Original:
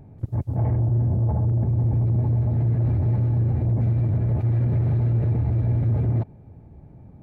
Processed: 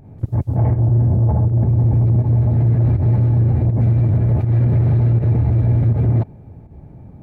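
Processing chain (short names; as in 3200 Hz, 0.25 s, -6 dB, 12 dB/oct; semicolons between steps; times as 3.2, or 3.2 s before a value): pump 81 bpm, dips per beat 1, -10 dB, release 0.102 s; gain +6.5 dB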